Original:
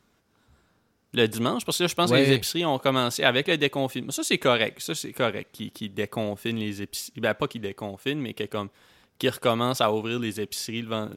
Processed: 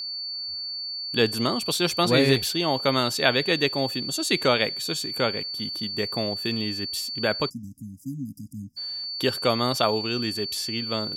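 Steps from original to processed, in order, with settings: whistle 4.5 kHz -30 dBFS; spectral selection erased 7.49–8.77 s, 300–4800 Hz

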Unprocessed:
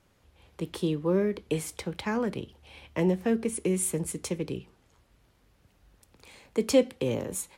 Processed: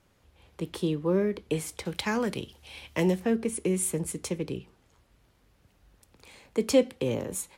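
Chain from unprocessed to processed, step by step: 1.85–3.20 s: treble shelf 2.5 kHz +10.5 dB

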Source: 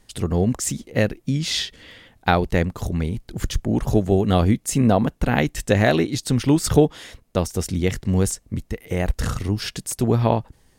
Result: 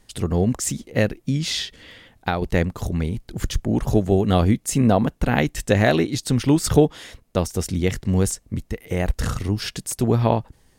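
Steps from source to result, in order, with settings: 1.49–2.42 s: compression 2:1, threshold -23 dBFS, peak gain reduction 6.5 dB

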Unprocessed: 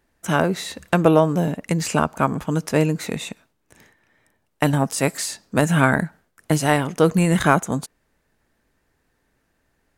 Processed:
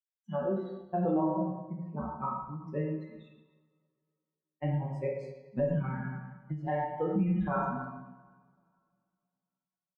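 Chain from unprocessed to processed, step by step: expander on every frequency bin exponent 3; 0.81–2.20 s: level-controlled noise filter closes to 500 Hz, open at -16.5 dBFS; low-pass 1 kHz 12 dB/octave; reverberation RT60 1.1 s, pre-delay 3 ms, DRR -3 dB; 5.82–6.67 s: compression 3:1, threshold -27 dBFS, peak gain reduction 8.5 dB; comb 5.4 ms, depth 78%; peak limiter -14.5 dBFS, peak gain reduction 10.5 dB; feedback comb 64 Hz, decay 0.37 s, harmonics all, mix 80%; endings held to a fixed fall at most 140 dB/s

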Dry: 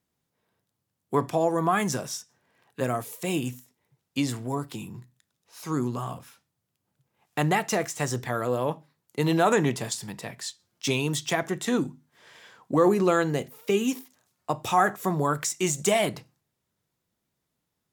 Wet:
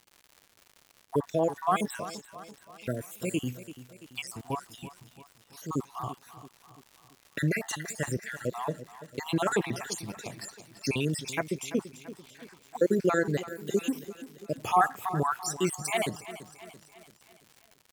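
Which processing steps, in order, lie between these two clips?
random holes in the spectrogram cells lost 54%; 2.05–2.86 s: treble shelf 5.1 kHz -11 dB; crackle 160 per s -40 dBFS; on a send: feedback delay 337 ms, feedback 50%, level -14.5 dB; on the sum: trim -1 dB

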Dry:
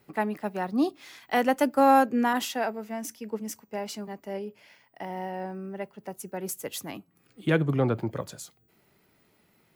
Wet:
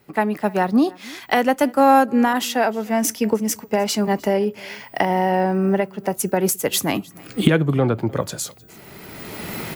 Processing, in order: recorder AGC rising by 19 dB/s; on a send: delay 306 ms -24 dB; on the sum: trim +5.5 dB

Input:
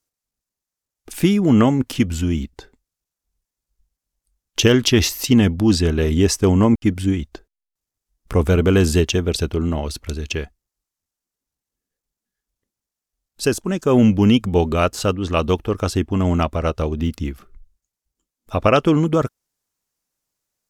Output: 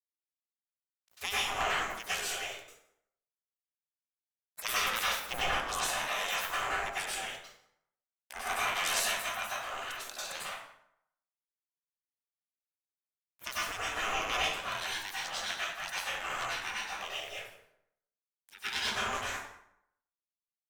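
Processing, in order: single-diode clipper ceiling -17 dBFS; spectral gate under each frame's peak -25 dB weak; 5.26–5.71 s: tilt EQ -1.5 dB/octave; in parallel at -1.5 dB: compression, threshold -44 dBFS, peak gain reduction 16 dB; on the sum: crossover distortion -51 dBFS; on a send: delay 167 ms -22.5 dB; on the sum: plate-style reverb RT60 0.74 s, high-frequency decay 0.65×, pre-delay 85 ms, DRR -8 dB; endings held to a fixed fall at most 140 dB/s; trim -5 dB

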